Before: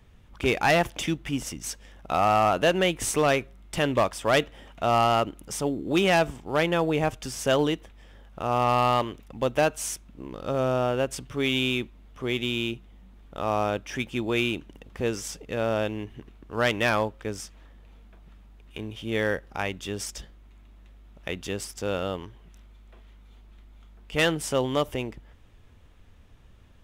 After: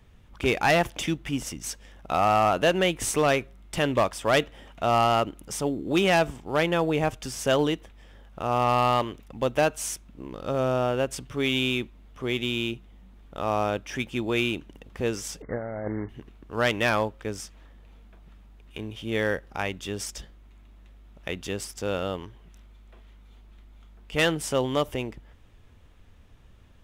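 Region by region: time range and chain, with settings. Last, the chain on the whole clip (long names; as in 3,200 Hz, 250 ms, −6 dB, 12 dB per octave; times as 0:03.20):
0:15.42–0:16.09: variable-slope delta modulation 16 kbit/s + linear-phase brick-wall low-pass 2,200 Hz + compressor whose output falls as the input rises −30 dBFS, ratio −0.5
whole clip: no processing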